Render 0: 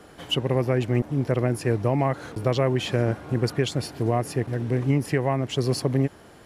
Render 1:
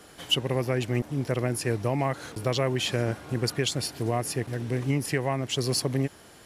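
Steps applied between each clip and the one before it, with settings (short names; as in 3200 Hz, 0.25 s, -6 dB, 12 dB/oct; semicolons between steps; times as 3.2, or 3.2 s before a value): high shelf 2400 Hz +11 dB; gain -4.5 dB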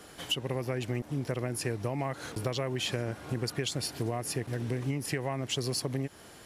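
compressor, threshold -28 dBFS, peak gain reduction 10 dB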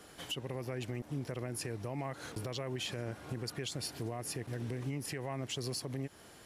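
limiter -24 dBFS, peak gain reduction 7 dB; gain -4.5 dB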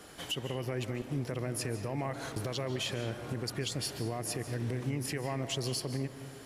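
reverb RT60 1.3 s, pre-delay 0.115 s, DRR 9 dB; gain +3.5 dB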